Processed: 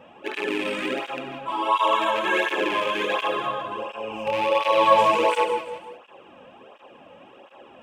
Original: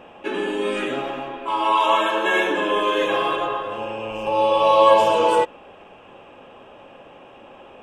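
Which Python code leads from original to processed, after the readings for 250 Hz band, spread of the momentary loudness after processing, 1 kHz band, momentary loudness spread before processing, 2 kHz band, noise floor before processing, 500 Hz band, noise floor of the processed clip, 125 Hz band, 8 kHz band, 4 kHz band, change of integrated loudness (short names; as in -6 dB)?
-3.5 dB, 15 LU, -2.5 dB, 14 LU, -1.5 dB, -46 dBFS, -4.5 dB, -50 dBFS, -4.0 dB, n/a, -2.0 dB, -3.0 dB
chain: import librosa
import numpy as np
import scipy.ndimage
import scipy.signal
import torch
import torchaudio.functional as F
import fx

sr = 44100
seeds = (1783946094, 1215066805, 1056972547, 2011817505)

y = fx.rattle_buzz(x, sr, strikes_db=-33.0, level_db=-14.0)
y = y + 10.0 ** (-16.0 / 20.0) * np.pad(y, (int(343 * sr / 1000.0), 0))[:len(y)]
y = fx.rev_gated(y, sr, seeds[0], gate_ms=210, shape='rising', drr_db=5.5)
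y = fx.flanger_cancel(y, sr, hz=1.4, depth_ms=3.0)
y = F.gain(torch.from_numpy(y), -1.5).numpy()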